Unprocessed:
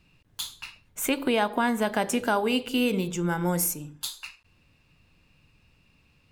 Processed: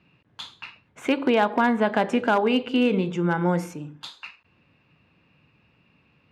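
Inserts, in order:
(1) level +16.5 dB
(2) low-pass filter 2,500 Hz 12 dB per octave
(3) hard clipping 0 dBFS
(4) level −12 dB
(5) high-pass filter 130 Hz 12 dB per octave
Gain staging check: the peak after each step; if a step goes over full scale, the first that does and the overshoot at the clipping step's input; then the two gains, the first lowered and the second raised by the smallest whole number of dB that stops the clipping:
+4.0, +4.0, 0.0, −12.0, −8.0 dBFS
step 1, 4.0 dB
step 1 +12.5 dB, step 4 −8 dB

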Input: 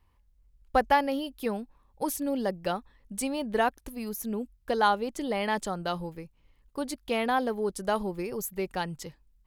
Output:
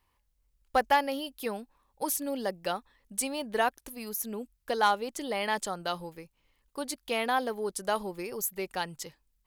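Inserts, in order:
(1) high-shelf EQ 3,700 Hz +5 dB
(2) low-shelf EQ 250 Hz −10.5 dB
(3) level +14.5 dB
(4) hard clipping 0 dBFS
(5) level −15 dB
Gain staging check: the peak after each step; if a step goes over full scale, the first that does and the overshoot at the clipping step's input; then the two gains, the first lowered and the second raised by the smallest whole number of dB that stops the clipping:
−9.5, −10.5, +4.0, 0.0, −15.0 dBFS
step 3, 4.0 dB
step 3 +10.5 dB, step 5 −11 dB

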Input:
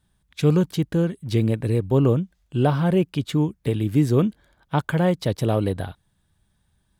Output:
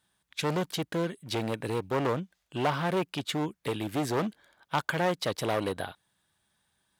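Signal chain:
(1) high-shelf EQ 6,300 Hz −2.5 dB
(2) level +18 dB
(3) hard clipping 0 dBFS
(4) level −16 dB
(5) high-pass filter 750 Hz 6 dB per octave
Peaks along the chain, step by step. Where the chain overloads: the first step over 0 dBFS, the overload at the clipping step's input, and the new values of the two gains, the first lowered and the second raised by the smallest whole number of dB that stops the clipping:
−8.0, +10.0, 0.0, −16.0, −12.5 dBFS
step 2, 10.0 dB
step 2 +8 dB, step 4 −6 dB

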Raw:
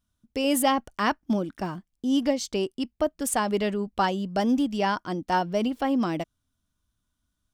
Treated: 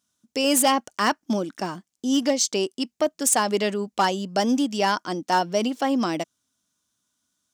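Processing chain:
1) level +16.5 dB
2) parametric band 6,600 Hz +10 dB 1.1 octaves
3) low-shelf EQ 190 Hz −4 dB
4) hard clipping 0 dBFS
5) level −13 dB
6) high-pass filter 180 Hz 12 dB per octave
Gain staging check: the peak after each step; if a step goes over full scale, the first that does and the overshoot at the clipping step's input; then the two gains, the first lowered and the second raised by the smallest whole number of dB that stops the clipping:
+5.0, +9.5, +9.5, 0.0, −13.0, −9.5 dBFS
step 1, 9.5 dB
step 1 +6.5 dB, step 5 −3 dB

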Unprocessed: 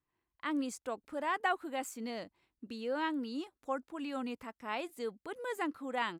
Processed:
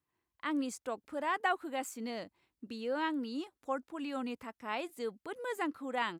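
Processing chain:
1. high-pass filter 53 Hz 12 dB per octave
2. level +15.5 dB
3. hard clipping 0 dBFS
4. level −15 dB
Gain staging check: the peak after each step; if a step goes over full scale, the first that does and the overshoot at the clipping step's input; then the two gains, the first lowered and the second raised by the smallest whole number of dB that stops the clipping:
−19.5, −4.0, −4.0, −19.0 dBFS
no step passes full scale

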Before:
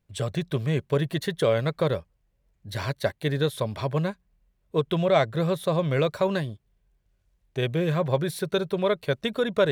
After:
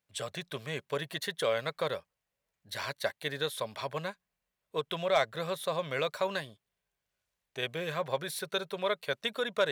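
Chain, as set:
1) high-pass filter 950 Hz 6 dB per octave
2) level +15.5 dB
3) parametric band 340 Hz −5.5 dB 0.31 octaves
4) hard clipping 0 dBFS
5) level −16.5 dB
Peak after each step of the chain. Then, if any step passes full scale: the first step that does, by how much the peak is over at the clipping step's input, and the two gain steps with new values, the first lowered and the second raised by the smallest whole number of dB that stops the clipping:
−11.0, +4.5, +4.5, 0.0, −16.5 dBFS
step 2, 4.5 dB
step 2 +10.5 dB, step 5 −11.5 dB

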